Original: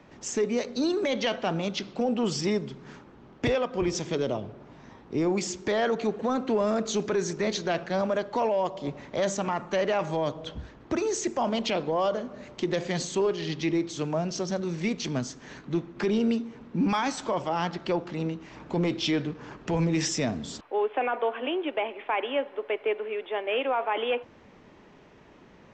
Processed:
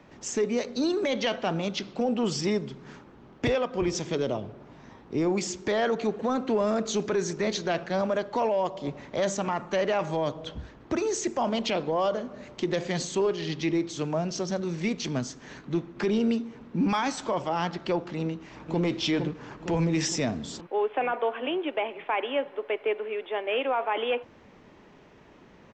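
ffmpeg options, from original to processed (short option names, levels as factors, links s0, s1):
-filter_complex "[0:a]asplit=2[s0][s1];[s1]afade=t=in:st=18.22:d=0.01,afade=t=out:st=18.82:d=0.01,aecho=0:1:460|920|1380|1840|2300|2760|3220|3680:0.473151|0.283891|0.170334|0.102201|0.0613204|0.0367922|0.0220753|0.0132452[s2];[s0][s2]amix=inputs=2:normalize=0"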